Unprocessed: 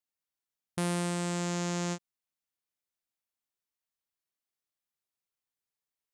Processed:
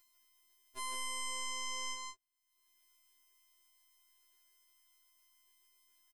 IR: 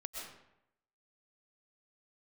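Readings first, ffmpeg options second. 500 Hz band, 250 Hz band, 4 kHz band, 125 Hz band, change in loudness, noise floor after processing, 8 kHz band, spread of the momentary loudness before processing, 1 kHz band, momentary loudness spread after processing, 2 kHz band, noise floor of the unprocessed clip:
-20.0 dB, -30.0 dB, +0.5 dB, under -30 dB, -6.5 dB, -82 dBFS, -1.5 dB, 8 LU, -3.5 dB, 12 LU, -2.5 dB, under -85 dBFS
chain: -filter_complex "[0:a]alimiter=limit=-24dB:level=0:latency=1:release=407,afftfilt=real='hypot(re,im)*cos(PI*b)':imag='0':win_size=512:overlap=0.75,acompressor=mode=upward:threshold=-54dB:ratio=2.5,asplit=2[a][b];[b]aecho=0:1:160:0.631[c];[a][c]amix=inputs=2:normalize=0,afftfilt=real='re*2.45*eq(mod(b,6),0)':imag='im*2.45*eq(mod(b,6),0)':win_size=2048:overlap=0.75,volume=3dB"

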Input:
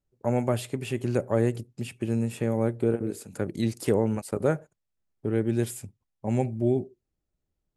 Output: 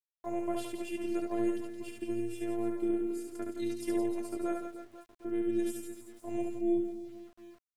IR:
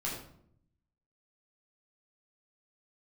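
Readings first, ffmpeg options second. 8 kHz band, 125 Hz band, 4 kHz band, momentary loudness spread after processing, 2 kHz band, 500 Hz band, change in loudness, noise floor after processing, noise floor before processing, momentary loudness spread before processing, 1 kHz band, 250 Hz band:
-8.0 dB, -23.5 dB, -7.5 dB, 13 LU, -9.0 dB, -7.5 dB, -7.0 dB, under -85 dBFS, -82 dBFS, 9 LU, -6.5 dB, -4.0 dB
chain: -af "afftfilt=real='hypot(re,im)*cos(PI*b)':imag='0':win_size=512:overlap=0.75,aecho=1:1:70|168|305.2|497.3|766.2:0.631|0.398|0.251|0.158|0.1,aeval=exprs='val(0)*gte(abs(val(0)),0.00282)':c=same,volume=-6.5dB"

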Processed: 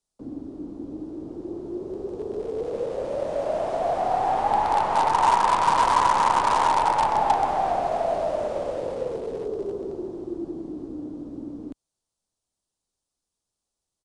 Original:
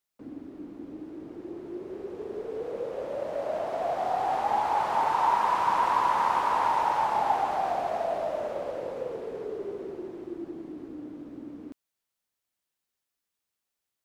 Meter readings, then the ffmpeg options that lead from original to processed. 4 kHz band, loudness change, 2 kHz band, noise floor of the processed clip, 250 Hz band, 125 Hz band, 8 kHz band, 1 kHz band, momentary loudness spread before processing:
+7.5 dB, +4.5 dB, +4.0 dB, -85 dBFS, +6.0 dB, +9.0 dB, n/a, +4.5 dB, 18 LU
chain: -filter_complex "[0:a]lowshelf=f=75:g=12,acrossover=split=140|1200|3400[a][b][c][d];[c]acrusher=bits=6:dc=4:mix=0:aa=0.000001[e];[d]alimiter=level_in=26.5dB:limit=-24dB:level=0:latency=1,volume=-26.5dB[f];[a][b][e][f]amix=inputs=4:normalize=0,aresample=22050,aresample=44100,volume=5dB"

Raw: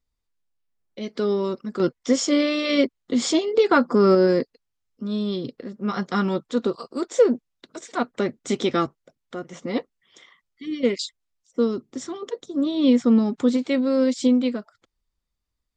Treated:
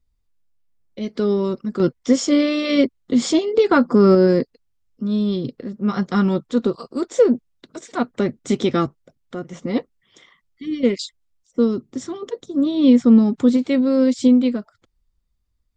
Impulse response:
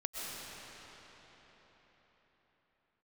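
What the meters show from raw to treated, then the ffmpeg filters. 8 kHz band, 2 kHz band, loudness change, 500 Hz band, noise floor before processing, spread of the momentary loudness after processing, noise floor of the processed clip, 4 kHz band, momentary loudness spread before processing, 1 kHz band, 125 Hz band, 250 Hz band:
0.0 dB, 0.0 dB, +4.0 dB, +2.5 dB, -80 dBFS, 16 LU, -70 dBFS, 0.0 dB, 16 LU, +0.5 dB, +6.5 dB, +5.0 dB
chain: -af "lowshelf=f=220:g=11.5"

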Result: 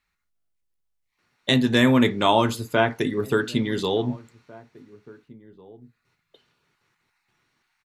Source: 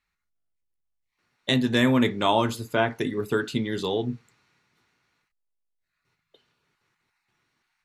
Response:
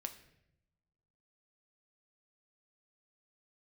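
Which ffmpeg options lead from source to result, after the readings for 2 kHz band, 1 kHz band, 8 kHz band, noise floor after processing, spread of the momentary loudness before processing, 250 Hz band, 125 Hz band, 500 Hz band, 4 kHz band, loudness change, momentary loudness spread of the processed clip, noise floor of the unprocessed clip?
+3.0 dB, +3.0 dB, +3.0 dB, -77 dBFS, 9 LU, +3.0 dB, +3.0 dB, +3.0 dB, +3.0 dB, +3.0 dB, 9 LU, -81 dBFS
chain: -filter_complex "[0:a]asplit=2[a][b];[b]adelay=1749,volume=-22dB,highshelf=f=4k:g=-39.4[c];[a][c]amix=inputs=2:normalize=0,volume=3dB"

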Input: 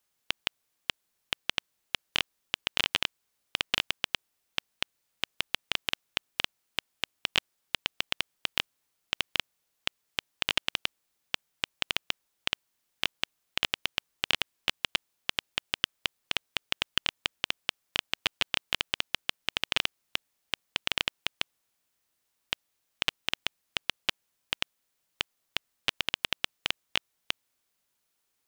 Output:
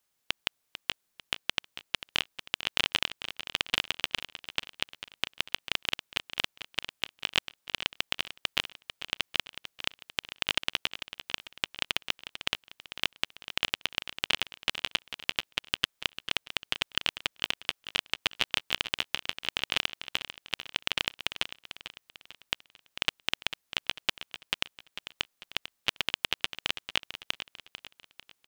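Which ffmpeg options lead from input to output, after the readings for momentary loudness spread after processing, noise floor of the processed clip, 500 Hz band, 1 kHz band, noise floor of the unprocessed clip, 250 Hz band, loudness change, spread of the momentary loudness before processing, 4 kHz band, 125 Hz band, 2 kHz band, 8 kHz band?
8 LU, -78 dBFS, +0.5 dB, +0.5 dB, -78 dBFS, +0.5 dB, +0.5 dB, 8 LU, +0.5 dB, +0.5 dB, +0.5 dB, +0.5 dB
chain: -af "aecho=1:1:446|892|1338|1784:0.266|0.112|0.0469|0.0197"

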